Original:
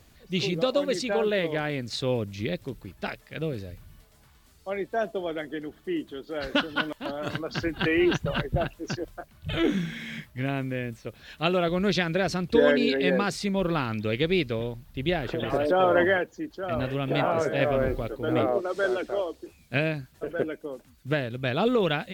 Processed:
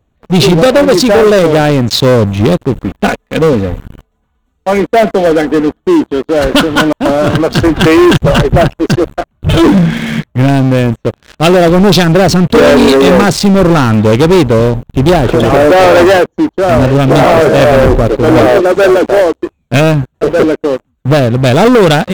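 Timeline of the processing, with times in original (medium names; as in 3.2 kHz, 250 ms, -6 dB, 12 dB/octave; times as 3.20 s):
2.77–5.80 s: comb 4.1 ms, depth 56%
whole clip: local Wiener filter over 9 samples; peaking EQ 2 kHz -8 dB 1 oct; waveshaping leveller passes 5; trim +7.5 dB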